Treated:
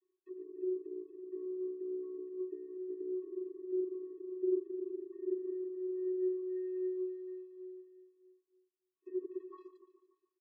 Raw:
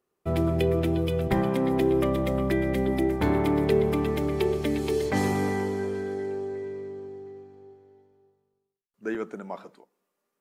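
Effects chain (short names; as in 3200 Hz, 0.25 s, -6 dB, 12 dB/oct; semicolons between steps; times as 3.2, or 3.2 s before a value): treble ducked by the level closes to 480 Hz, closed at -24.5 dBFS; dynamic EQ 360 Hz, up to +6 dB, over -37 dBFS; reverse; compressor 4:1, threshold -35 dBFS, peak gain reduction 16.5 dB; reverse; flange 1.3 Hz, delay 2.1 ms, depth 2.1 ms, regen +61%; vocoder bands 32, square 369 Hz; on a send: feedback echo 0.145 s, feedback 58%, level -12 dB; on the sum: gain +2.5 dB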